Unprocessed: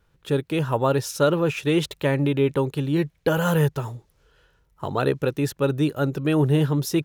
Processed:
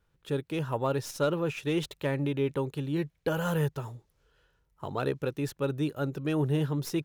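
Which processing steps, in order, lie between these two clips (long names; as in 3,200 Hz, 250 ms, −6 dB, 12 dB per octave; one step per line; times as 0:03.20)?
stylus tracing distortion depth 0.027 ms
level −8 dB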